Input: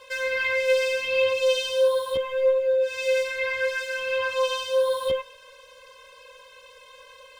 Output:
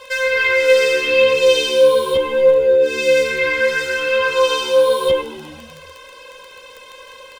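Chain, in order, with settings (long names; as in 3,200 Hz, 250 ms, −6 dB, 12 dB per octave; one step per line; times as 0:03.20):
surface crackle 10 per second −35 dBFS
echo with shifted repeats 128 ms, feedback 63%, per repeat −74 Hz, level −17 dB
level +9 dB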